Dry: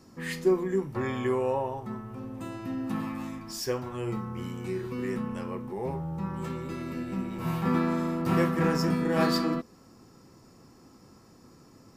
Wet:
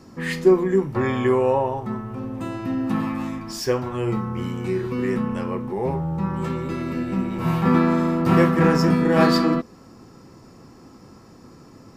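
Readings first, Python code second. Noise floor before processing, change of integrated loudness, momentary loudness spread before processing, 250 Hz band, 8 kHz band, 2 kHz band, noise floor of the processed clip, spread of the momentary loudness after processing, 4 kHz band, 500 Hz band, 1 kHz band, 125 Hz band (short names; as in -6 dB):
-56 dBFS, +8.5 dB, 11 LU, +8.5 dB, +4.0 dB, +8.0 dB, -48 dBFS, 12 LU, +5.5 dB, +8.5 dB, +8.5 dB, +8.5 dB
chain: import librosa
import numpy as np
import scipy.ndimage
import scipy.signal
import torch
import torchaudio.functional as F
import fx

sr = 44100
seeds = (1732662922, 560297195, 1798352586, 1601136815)

y = fx.high_shelf(x, sr, hz=5900.0, db=-8.0)
y = y * 10.0 ** (8.5 / 20.0)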